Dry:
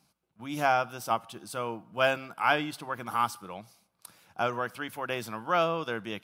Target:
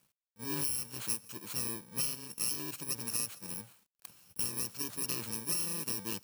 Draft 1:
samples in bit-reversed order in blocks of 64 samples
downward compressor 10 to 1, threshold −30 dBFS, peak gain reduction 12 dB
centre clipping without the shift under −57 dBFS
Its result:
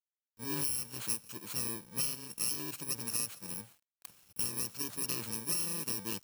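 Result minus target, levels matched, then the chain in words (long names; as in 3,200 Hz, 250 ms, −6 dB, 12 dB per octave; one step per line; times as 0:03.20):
centre clipping without the shift: distortion +10 dB
samples in bit-reversed order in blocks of 64 samples
downward compressor 10 to 1, threshold −30 dBFS, peak gain reduction 12 dB
centre clipping without the shift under −65 dBFS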